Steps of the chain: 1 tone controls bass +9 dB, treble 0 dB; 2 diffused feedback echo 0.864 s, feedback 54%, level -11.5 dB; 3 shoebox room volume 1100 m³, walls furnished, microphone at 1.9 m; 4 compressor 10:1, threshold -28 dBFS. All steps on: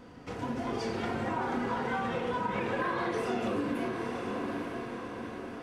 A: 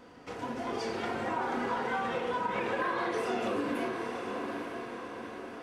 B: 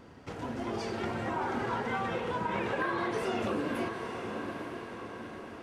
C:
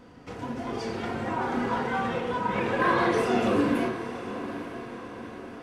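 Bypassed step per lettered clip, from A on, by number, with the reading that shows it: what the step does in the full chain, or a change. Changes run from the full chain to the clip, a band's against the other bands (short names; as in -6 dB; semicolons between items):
1, 125 Hz band -8.0 dB; 3, momentary loudness spread change +3 LU; 4, mean gain reduction 3.0 dB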